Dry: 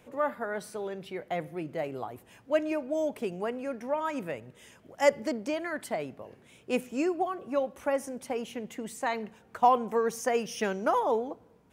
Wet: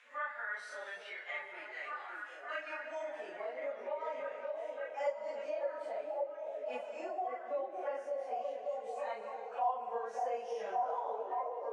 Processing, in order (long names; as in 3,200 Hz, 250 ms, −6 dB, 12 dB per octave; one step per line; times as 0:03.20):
random phases in long frames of 100 ms
band-pass filter sweep 1,700 Hz → 660 Hz, 0:02.37–0:03.51
on a send: echo through a band-pass that steps 569 ms, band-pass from 410 Hz, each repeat 0.7 octaves, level 0 dB
on the sum: harmonic and percussive parts rebalanced percussive −10 dB
meter weighting curve ITU-R 468
reverb whose tail is shaped and stops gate 360 ms flat, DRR 9.5 dB
downward compressor 2 to 1, threshold −45 dBFS, peak gain reduction 13.5 dB
level +5 dB